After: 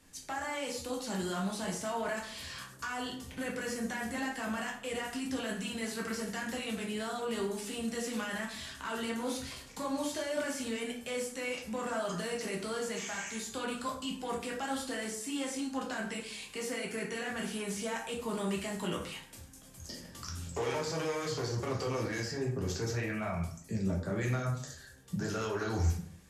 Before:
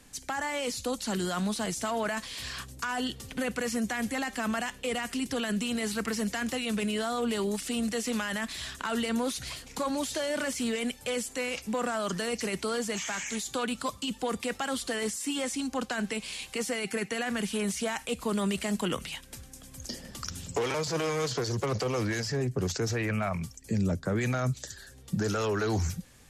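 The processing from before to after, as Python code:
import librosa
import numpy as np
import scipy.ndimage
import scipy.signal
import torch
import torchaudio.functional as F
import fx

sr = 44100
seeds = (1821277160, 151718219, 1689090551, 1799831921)

y = fx.rev_plate(x, sr, seeds[0], rt60_s=0.6, hf_ratio=0.6, predelay_ms=0, drr_db=-2.0)
y = y * 10.0 ** (-8.5 / 20.0)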